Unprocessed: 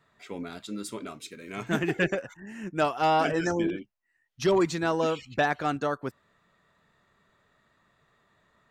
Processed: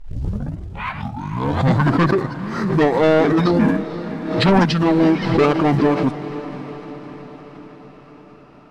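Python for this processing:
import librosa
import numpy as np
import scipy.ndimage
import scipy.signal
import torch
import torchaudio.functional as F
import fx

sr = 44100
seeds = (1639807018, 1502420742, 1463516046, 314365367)

p1 = fx.tape_start_head(x, sr, length_s=2.14)
p2 = fx.peak_eq(p1, sr, hz=440.0, db=3.5, octaves=2.2)
p3 = fx.rider(p2, sr, range_db=10, speed_s=0.5)
p4 = p2 + (p3 * librosa.db_to_amplitude(2.0))
p5 = fx.quant_float(p4, sr, bits=4)
p6 = 10.0 ** (-15.5 / 20.0) * np.tanh(p5 / 10.0 ** (-15.5 / 20.0))
p7 = fx.formant_shift(p6, sr, semitones=-6)
p8 = fx.air_absorb(p7, sr, metres=55.0)
p9 = p8 + fx.echo_diffused(p8, sr, ms=505, feedback_pct=60, wet_db=-13, dry=0)
p10 = fx.pre_swell(p9, sr, db_per_s=59.0)
y = p10 * librosa.db_to_amplitude(5.5)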